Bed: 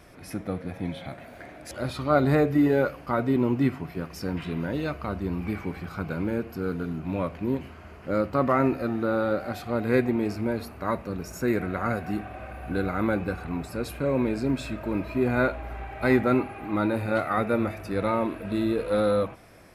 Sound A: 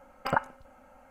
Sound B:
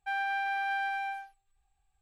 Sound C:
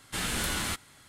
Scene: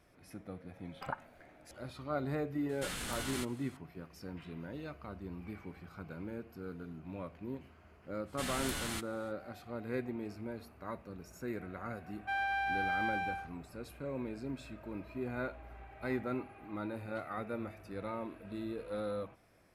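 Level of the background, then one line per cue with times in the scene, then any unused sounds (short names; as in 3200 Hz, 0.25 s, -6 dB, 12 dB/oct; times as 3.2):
bed -15 dB
0.76 add A -13.5 dB
2.69 add C -4.5 dB + limiter -26.5 dBFS
8.25 add C -8 dB, fades 0.05 s
12.21 add B -2.5 dB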